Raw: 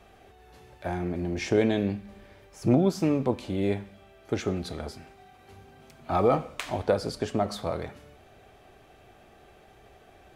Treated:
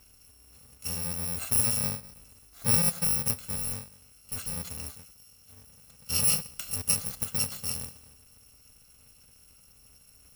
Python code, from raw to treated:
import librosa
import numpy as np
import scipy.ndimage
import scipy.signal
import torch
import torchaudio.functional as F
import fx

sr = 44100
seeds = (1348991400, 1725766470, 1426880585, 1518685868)

y = fx.bit_reversed(x, sr, seeds[0], block=128)
y = fx.clip_hard(y, sr, threshold_db=-28.0, at=(3.56, 4.57))
y = y * 10.0 ** (-2.5 / 20.0)